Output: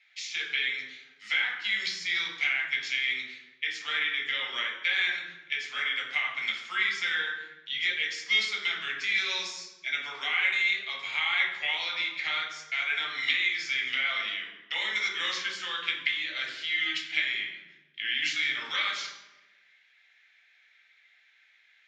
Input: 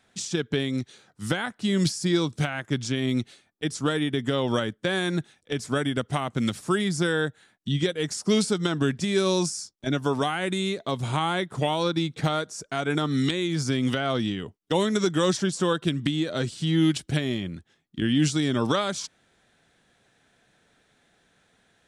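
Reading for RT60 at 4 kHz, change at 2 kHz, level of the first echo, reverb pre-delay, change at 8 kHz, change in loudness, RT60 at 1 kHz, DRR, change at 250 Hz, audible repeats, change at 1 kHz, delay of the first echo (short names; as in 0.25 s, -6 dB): 0.75 s, +7.0 dB, none, 3 ms, -10.5 dB, -2.0 dB, 1.0 s, -2.5 dB, -30.0 dB, none, -8.5 dB, none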